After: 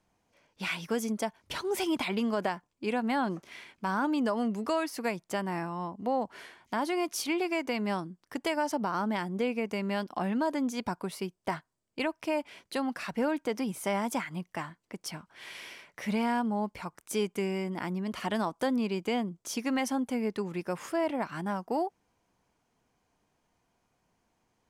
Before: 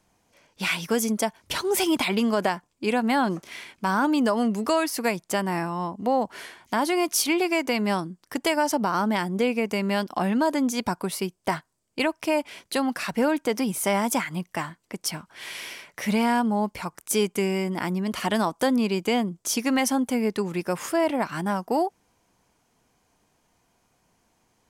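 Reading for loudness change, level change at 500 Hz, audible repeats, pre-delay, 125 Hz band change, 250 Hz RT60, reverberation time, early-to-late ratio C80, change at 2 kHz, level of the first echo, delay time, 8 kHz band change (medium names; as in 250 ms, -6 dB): -7.0 dB, -6.5 dB, no echo, no reverb, -6.5 dB, no reverb, no reverb, no reverb, -7.5 dB, no echo, no echo, -11.5 dB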